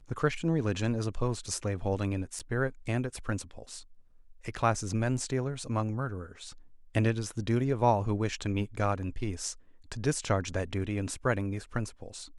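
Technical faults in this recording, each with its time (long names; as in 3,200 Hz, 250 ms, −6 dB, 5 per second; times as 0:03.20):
0:02.39–0:02.40: drop-out 7.6 ms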